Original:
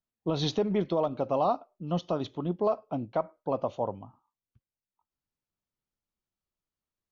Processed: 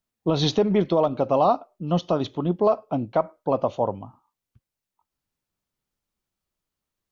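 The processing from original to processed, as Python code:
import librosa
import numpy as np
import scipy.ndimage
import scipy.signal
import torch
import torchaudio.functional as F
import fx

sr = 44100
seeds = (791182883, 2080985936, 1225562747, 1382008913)

y = F.gain(torch.from_numpy(x), 7.0).numpy()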